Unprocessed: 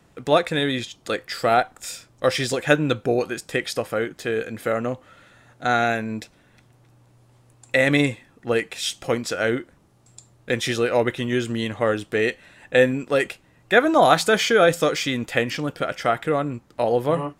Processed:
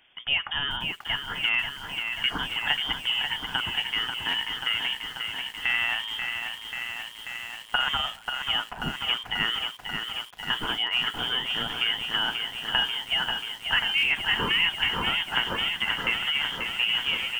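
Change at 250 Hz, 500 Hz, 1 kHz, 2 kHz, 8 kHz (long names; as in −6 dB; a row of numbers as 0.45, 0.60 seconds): −17.0, −23.5, −8.5, −1.0, −12.5 decibels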